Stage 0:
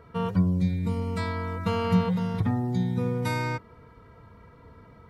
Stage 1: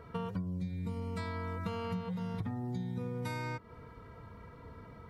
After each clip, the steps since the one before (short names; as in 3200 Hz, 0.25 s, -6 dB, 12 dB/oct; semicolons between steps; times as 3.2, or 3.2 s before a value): compressor 6:1, threshold -35 dBFS, peak gain reduction 17 dB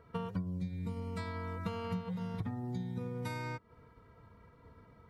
upward expander 1.5:1, over -54 dBFS; gain +1 dB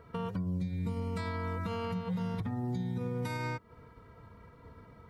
limiter -31.5 dBFS, peak gain reduction 7.5 dB; gain +5 dB